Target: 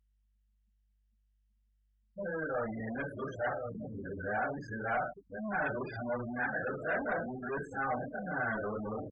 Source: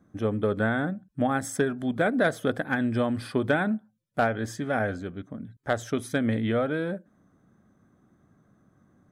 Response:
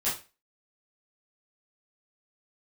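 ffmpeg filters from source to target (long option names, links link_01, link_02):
-filter_complex "[0:a]areverse,asplit=2[link_01][link_02];[link_02]adelay=1061,lowpass=frequency=2900:poles=1,volume=-17dB,asplit=2[link_03][link_04];[link_04]adelay=1061,lowpass=frequency=2900:poles=1,volume=0.15[link_05];[link_01][link_03][link_05]amix=inputs=3:normalize=0,acrossover=split=210|410|2500[link_06][link_07][link_08][link_09];[link_09]asoftclip=type=hard:threshold=-36dB[link_10];[link_06][link_07][link_08][link_10]amix=inputs=4:normalize=0[link_11];[1:a]atrim=start_sample=2205[link_12];[link_11][link_12]afir=irnorm=-1:irlink=0,asoftclip=type=tanh:threshold=-20dB,alimiter=level_in=3dB:limit=-24dB:level=0:latency=1:release=22,volume=-3dB,afftfilt=real='re*gte(hypot(re,im),0.0316)':imag='im*gte(hypot(re,im),0.0316)':win_size=1024:overlap=0.75,aeval=exprs='val(0)+0.00141*(sin(2*PI*50*n/s)+sin(2*PI*2*50*n/s)/2+sin(2*PI*3*50*n/s)/3+sin(2*PI*4*50*n/s)/4+sin(2*PI*5*50*n/s)/5)':channel_layout=same,acrossover=split=600 3800:gain=0.126 1 0.0891[link_13][link_14][link_15];[link_13][link_14][link_15]amix=inputs=3:normalize=0,anlmdn=0.00158,lowshelf=frequency=340:gain=10.5" -ar 48000 -c:a libopus -b:a 128k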